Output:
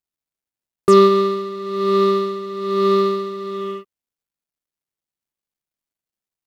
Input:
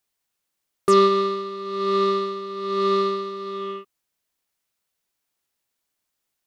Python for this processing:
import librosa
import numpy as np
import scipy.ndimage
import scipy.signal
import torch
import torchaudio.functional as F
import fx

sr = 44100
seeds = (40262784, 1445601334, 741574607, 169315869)

y = fx.law_mismatch(x, sr, coded='A')
y = fx.low_shelf(y, sr, hz=480.0, db=7.5)
y = y * librosa.db_to_amplitude(1.5)